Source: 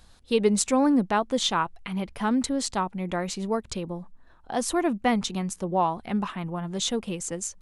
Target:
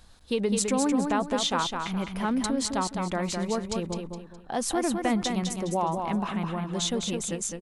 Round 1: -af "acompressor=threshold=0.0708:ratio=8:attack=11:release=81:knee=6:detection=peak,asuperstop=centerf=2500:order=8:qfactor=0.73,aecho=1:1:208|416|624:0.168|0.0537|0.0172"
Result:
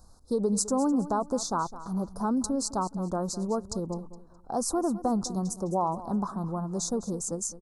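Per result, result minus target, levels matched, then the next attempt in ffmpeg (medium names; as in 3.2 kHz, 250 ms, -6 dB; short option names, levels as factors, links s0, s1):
2 kHz band -13.0 dB; echo-to-direct -10.5 dB
-af "acompressor=threshold=0.0708:ratio=8:attack=11:release=81:knee=6:detection=peak,aecho=1:1:208|416|624:0.168|0.0537|0.0172"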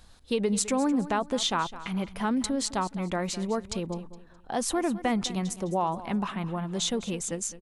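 echo-to-direct -10.5 dB
-af "acompressor=threshold=0.0708:ratio=8:attack=11:release=81:knee=6:detection=peak,aecho=1:1:208|416|624|832:0.562|0.18|0.0576|0.0184"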